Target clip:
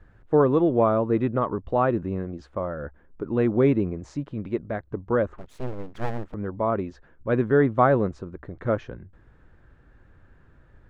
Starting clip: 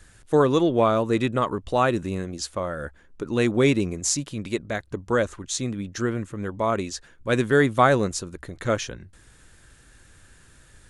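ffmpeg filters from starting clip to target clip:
-filter_complex "[0:a]lowpass=1.2k,asettb=1/sr,asplit=3[a][b][c];[a]atrim=end=5.384[d];[b]atrim=start=5.38:end=6.34,asetpts=PTS-STARTPTS,afade=t=in:d=0.004:c=qsin,afade=t=out:st=0.956:d=0.004:c=qsin,aeval=exprs='abs(val(0))':c=same[e];[c]atrim=start=6.336[f];[d][e]acrossfade=d=0.004:c1=hsin:c2=qsin[g];[g][f]acrossfade=d=0.004:c1=qsin:c2=hsin"

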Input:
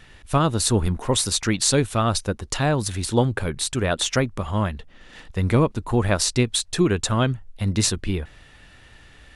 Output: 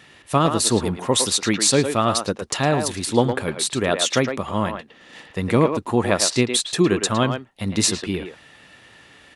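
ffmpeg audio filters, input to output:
-filter_complex "[0:a]highpass=160,bandreject=f=1.5k:w=16,asplit=2[a][b];[b]adelay=110,highpass=300,lowpass=3.4k,asoftclip=type=hard:threshold=-12dB,volume=-6dB[c];[a][c]amix=inputs=2:normalize=0,volume=2.5dB"

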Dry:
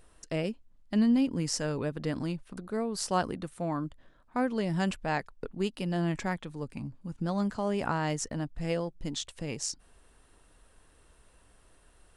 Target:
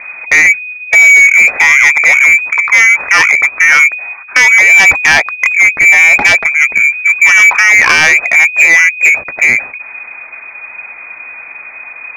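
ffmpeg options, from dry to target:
-af "apsyclip=27dB,lowpass=f=2.1k:t=q:w=0.5098,lowpass=f=2.1k:t=q:w=0.6013,lowpass=f=2.1k:t=q:w=0.9,lowpass=f=2.1k:t=q:w=2.563,afreqshift=-2500,acontrast=35,volume=-1dB"

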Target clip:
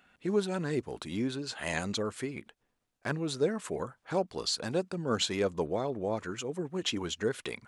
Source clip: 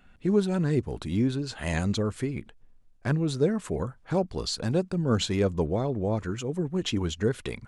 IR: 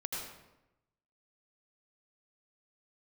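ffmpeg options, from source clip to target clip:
-af "highpass=f=490:p=1"

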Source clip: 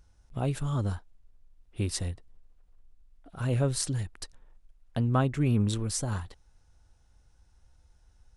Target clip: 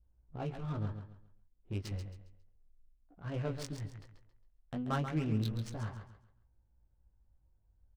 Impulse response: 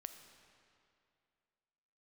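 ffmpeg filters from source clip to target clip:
-filter_complex "[0:a]asetrate=46305,aresample=44100,adynamicequalizer=threshold=0.00282:dfrequency=2900:dqfactor=0.71:tfrequency=2900:tqfactor=0.71:attack=5:release=100:ratio=0.375:range=3.5:mode=boostabove:tftype=bell,flanger=delay=17.5:depth=2.9:speed=0.33,adynamicsmooth=sensitivity=6:basefreq=820,asplit=2[a][b];[b]aecho=0:1:136|272|408|544:0.376|0.113|0.0338|0.0101[c];[a][c]amix=inputs=2:normalize=0,volume=-6dB"

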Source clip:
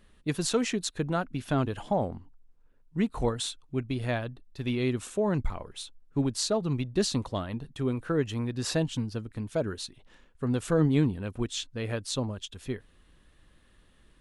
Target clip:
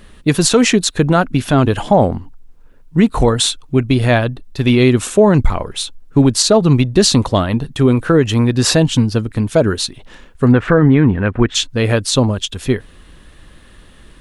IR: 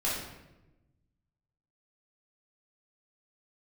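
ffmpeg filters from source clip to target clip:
-filter_complex "[0:a]asplit=3[a][b][c];[a]afade=t=out:st=10.51:d=0.02[d];[b]lowpass=f=1.8k:t=q:w=2.2,afade=t=in:st=10.51:d=0.02,afade=t=out:st=11.54:d=0.02[e];[c]afade=t=in:st=11.54:d=0.02[f];[d][e][f]amix=inputs=3:normalize=0,alimiter=level_in=19dB:limit=-1dB:release=50:level=0:latency=1,volume=-1dB"

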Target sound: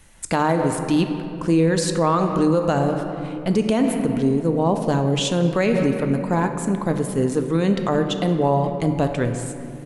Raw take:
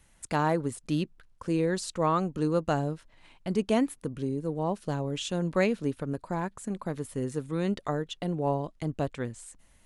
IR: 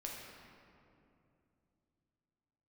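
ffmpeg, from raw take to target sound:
-filter_complex "[0:a]bandreject=f=50:t=h:w=6,bandreject=f=100:t=h:w=6,bandreject=f=150:t=h:w=6,asplit=2[a][b];[b]adelay=180,highpass=300,lowpass=3.4k,asoftclip=type=hard:threshold=-20.5dB,volume=-20dB[c];[a][c]amix=inputs=2:normalize=0,asplit=2[d][e];[1:a]atrim=start_sample=2205[f];[e][f]afir=irnorm=-1:irlink=0,volume=0dB[g];[d][g]amix=inputs=2:normalize=0,alimiter=level_in=15.5dB:limit=-1dB:release=50:level=0:latency=1,volume=-8.5dB"

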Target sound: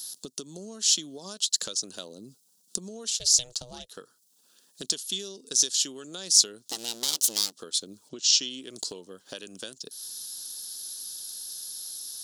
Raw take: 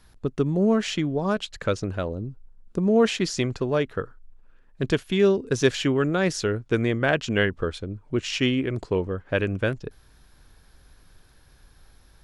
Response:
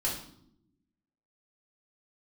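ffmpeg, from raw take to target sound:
-filter_complex "[0:a]asettb=1/sr,asplit=3[a][b][c];[a]atrim=end=6.644[d];[b]atrim=start=6.64:end=7.53,asetpts=PTS-STARTPTS,afade=t=in:d=0.004:c=qsin,afade=t=out:st=0.886:d=0.004:c=qsin,aeval=exprs='abs(val(0))':c=same[e];[c]atrim=start=7.526[f];[d][e]acrossfade=d=0.004:c1=hsin:c2=qsin[g];[g][f]acrossfade=d=0.004:c1=qsin:c2=hsin,highpass=f=190:w=0.5412,highpass=f=190:w=1.3066,acompressor=threshold=-35dB:ratio=16,asettb=1/sr,asplit=3[h][i][j];[h]atrim=end=3.104[k];[i]atrim=start=3.1:end=3.89,asetpts=PTS-STARTPTS,afade=t=in:d=0.004:c=qsin,afade=t=out:st=0.786:d=0.004:c=qsin,aeval=exprs='val(0)*sin(2*PI*240*n/s)':c=same[l];[j]atrim=start=3.886[m];[k][l]acrossfade=d=0.004:c1=hsin:c2=qsin[n];[n][m]acrossfade=d=0.004:c1=qsin:c2=hsin,aexciter=amount=14.7:drive=9.5:freq=3.6k,asplit=3[o][p][q];[o]afade=t=out:st=8.08:d=0.02[r];[p]lowpass=f=6.5k:w=0.5412,lowpass=f=6.5k:w=1.3066,afade=t=in:st=8.08:d=0.02,afade=t=out:st=8.49:d=0.02[s];[q]afade=t=in:st=8.49:d=0.02[t];[r][s][t]amix=inputs=3:normalize=0,volume=-3.5dB"

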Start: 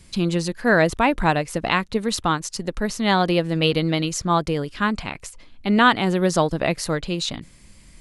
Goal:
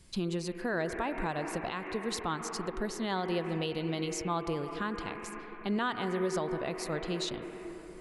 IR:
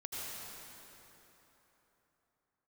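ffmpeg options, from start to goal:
-filter_complex "[0:a]asplit=2[a][b];[b]highpass=350,equalizer=f=370:t=q:w=4:g=9,equalizer=f=570:t=q:w=4:g=-10,equalizer=f=850:t=q:w=4:g=-5,equalizer=f=1.4k:t=q:w=4:g=-5,equalizer=f=2.3k:t=q:w=4:g=5,lowpass=f=2.4k:w=0.5412,lowpass=f=2.4k:w=1.3066[c];[1:a]atrim=start_sample=2205,highshelf=f=4.4k:g=-11[d];[c][d]afir=irnorm=-1:irlink=0,volume=-3.5dB[e];[a][e]amix=inputs=2:normalize=0,alimiter=limit=-14dB:level=0:latency=1:release=291,volume=-9dB"

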